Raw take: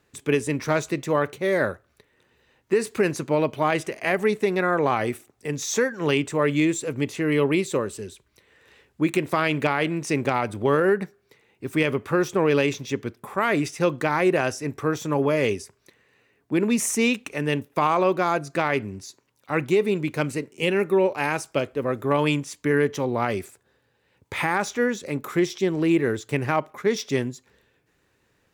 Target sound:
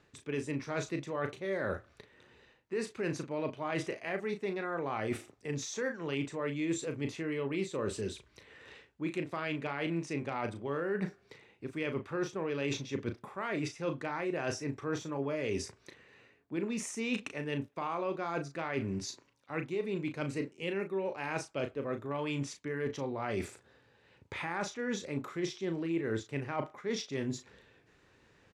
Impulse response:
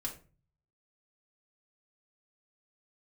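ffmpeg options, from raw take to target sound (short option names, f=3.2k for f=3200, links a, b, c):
-filter_complex "[0:a]areverse,acompressor=threshold=-34dB:ratio=12,areverse,lowpass=6.1k,asplit=2[a][b];[b]adelay=36,volume=-8dB[c];[a][c]amix=inputs=2:normalize=0,volume=2dB"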